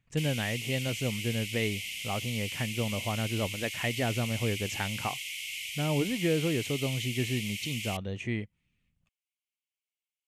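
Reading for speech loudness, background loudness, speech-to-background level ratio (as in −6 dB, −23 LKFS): −32.5 LKFS, −35.5 LKFS, 3.0 dB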